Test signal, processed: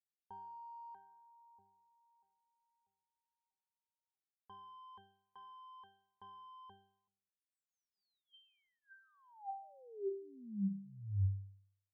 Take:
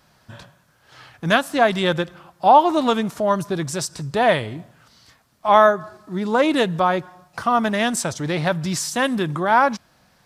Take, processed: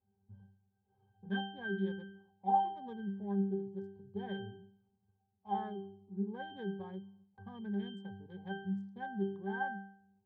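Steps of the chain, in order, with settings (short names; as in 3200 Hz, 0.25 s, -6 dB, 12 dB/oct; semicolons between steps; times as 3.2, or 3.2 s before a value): Wiener smoothing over 25 samples; octave resonator G, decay 0.58 s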